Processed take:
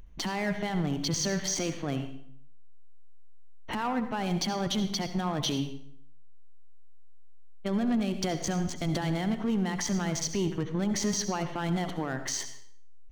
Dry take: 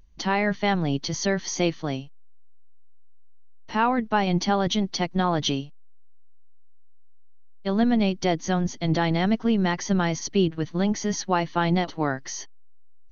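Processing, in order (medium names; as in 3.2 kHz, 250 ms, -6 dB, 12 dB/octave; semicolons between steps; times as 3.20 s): local Wiener filter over 9 samples; treble shelf 3.9 kHz +8 dB; in parallel at -1.5 dB: compression, threshold -31 dBFS, peak gain reduction 14.5 dB; on the sum: peak limiter -19 dBFS, peak gain reduction 13 dB; saturation -20.5 dBFS, distortion -18 dB; on a send at -9 dB: reverberation RT60 0.60 s, pre-delay 63 ms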